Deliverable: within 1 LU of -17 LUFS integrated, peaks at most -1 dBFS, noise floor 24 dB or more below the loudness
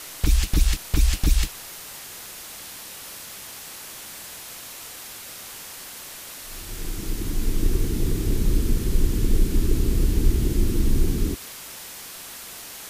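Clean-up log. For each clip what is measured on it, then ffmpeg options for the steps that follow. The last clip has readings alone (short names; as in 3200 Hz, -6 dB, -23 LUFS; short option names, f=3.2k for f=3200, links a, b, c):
noise floor -39 dBFS; noise floor target -52 dBFS; loudness -28.0 LUFS; peak -6.5 dBFS; loudness target -17.0 LUFS
-> -af "afftdn=nr=13:nf=-39"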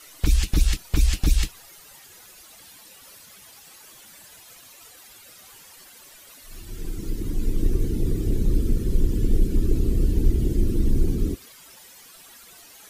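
noise floor -48 dBFS; noise floor target -50 dBFS
-> -af "afftdn=nr=6:nf=-48"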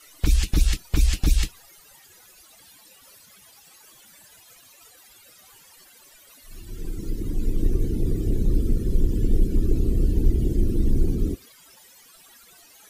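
noise floor -52 dBFS; loudness -25.5 LUFS; peak -7.0 dBFS; loudness target -17.0 LUFS
-> -af "volume=8.5dB,alimiter=limit=-1dB:level=0:latency=1"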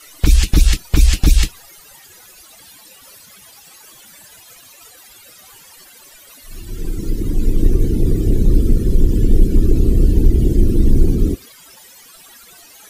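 loudness -17.5 LUFS; peak -1.0 dBFS; noise floor -44 dBFS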